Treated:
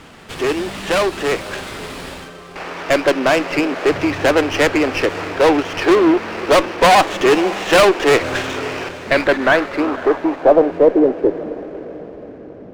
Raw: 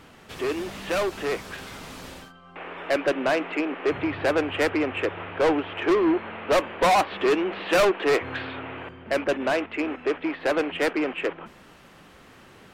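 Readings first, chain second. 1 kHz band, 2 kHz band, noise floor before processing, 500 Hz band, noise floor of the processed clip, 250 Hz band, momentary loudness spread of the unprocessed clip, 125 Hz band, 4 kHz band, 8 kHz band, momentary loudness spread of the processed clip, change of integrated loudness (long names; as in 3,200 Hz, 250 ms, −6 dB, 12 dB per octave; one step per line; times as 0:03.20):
+9.5 dB, +9.0 dB, −51 dBFS, +9.5 dB, −36 dBFS, +9.0 dB, 18 LU, +10.0 dB, +10.5 dB, +11.0 dB, 18 LU, +9.5 dB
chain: low-pass filter sweep 5,300 Hz → 270 Hz, 0:08.18–0:11.66
feedback delay with all-pass diffusion 540 ms, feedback 52%, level −15.5 dB
windowed peak hold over 5 samples
level +8.5 dB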